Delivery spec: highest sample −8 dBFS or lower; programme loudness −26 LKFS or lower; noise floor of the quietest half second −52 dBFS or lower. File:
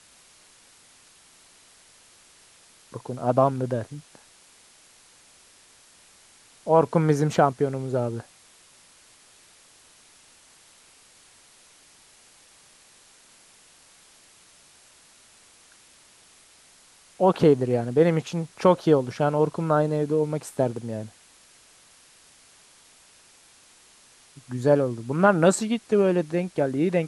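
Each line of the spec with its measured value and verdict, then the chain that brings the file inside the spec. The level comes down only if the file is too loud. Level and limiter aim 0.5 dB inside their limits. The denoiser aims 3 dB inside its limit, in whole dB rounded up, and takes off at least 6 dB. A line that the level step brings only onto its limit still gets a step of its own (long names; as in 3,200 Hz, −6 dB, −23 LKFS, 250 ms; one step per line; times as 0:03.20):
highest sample −4.5 dBFS: out of spec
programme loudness −23.0 LKFS: out of spec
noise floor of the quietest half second −55 dBFS: in spec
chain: level −3.5 dB
brickwall limiter −8.5 dBFS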